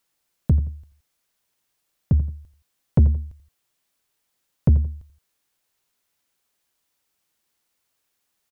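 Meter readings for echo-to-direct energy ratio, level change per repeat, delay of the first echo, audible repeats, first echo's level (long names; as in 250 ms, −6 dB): −14.0 dB, −9.0 dB, 86 ms, 2, −14.5 dB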